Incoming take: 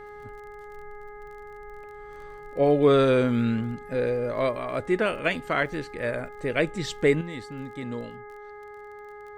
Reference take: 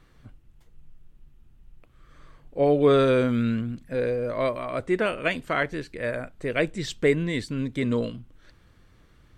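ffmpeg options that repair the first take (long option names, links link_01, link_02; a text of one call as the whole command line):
ffmpeg -i in.wav -af "adeclick=threshold=4,bandreject=frequency=415.5:width_type=h:width=4,bandreject=frequency=831:width_type=h:width=4,bandreject=frequency=1246.5:width_type=h:width=4,bandreject=frequency=1662:width_type=h:width=4,bandreject=frequency=2077.5:width_type=h:width=4,asetnsamples=nb_out_samples=441:pad=0,asendcmd='7.21 volume volume 9dB',volume=0dB" out.wav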